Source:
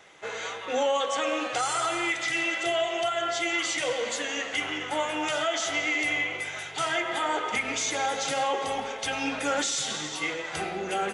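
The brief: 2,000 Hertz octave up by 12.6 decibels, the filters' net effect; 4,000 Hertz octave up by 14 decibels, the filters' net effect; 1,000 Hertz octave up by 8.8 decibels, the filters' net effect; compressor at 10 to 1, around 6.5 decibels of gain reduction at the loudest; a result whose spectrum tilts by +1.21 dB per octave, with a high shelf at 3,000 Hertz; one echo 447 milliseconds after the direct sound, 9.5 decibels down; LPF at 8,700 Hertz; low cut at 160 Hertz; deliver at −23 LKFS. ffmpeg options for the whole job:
ffmpeg -i in.wav -af "highpass=160,lowpass=8700,equalizer=frequency=1000:width_type=o:gain=8,equalizer=frequency=2000:width_type=o:gain=7,highshelf=frequency=3000:gain=9,equalizer=frequency=4000:width_type=o:gain=8.5,acompressor=threshold=-18dB:ratio=10,aecho=1:1:447:0.335,volume=-3dB" out.wav

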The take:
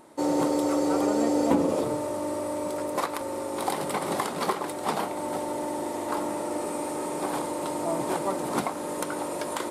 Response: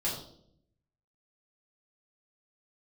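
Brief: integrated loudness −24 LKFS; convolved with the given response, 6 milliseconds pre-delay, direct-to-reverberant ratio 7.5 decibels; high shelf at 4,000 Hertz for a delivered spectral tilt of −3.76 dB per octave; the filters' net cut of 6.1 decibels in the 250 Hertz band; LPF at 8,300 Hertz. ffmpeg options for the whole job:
-filter_complex "[0:a]lowpass=8300,equalizer=frequency=250:width_type=o:gain=-8,highshelf=frequency=4000:gain=3.5,asplit=2[link_01][link_02];[1:a]atrim=start_sample=2205,adelay=6[link_03];[link_02][link_03]afir=irnorm=-1:irlink=0,volume=-13dB[link_04];[link_01][link_04]amix=inputs=2:normalize=0,volume=5.5dB"

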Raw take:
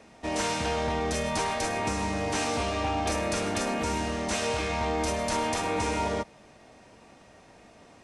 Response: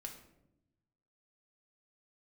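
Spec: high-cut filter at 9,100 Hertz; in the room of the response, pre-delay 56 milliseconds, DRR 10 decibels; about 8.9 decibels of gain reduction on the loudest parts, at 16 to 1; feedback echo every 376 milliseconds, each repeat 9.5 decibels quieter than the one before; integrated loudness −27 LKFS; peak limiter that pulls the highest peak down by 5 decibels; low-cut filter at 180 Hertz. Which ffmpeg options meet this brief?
-filter_complex "[0:a]highpass=180,lowpass=9100,acompressor=threshold=-34dB:ratio=16,alimiter=level_in=6.5dB:limit=-24dB:level=0:latency=1,volume=-6.5dB,aecho=1:1:376|752|1128|1504:0.335|0.111|0.0365|0.012,asplit=2[link_01][link_02];[1:a]atrim=start_sample=2205,adelay=56[link_03];[link_02][link_03]afir=irnorm=-1:irlink=0,volume=-6dB[link_04];[link_01][link_04]amix=inputs=2:normalize=0,volume=11.5dB"

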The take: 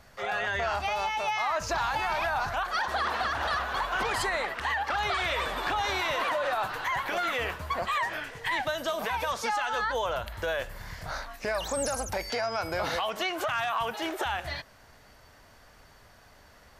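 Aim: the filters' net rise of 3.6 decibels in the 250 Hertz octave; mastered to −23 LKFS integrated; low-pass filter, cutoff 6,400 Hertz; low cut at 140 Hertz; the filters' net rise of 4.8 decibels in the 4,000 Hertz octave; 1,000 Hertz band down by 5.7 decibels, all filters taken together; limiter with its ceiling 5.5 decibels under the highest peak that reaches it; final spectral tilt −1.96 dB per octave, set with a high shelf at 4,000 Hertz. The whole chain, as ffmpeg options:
ffmpeg -i in.wav -af "highpass=140,lowpass=6400,equalizer=frequency=250:width_type=o:gain=6,equalizer=frequency=1000:width_type=o:gain=-8.5,highshelf=frequency=4000:gain=4,equalizer=frequency=4000:width_type=o:gain=5,volume=8.5dB,alimiter=limit=-13.5dB:level=0:latency=1" out.wav

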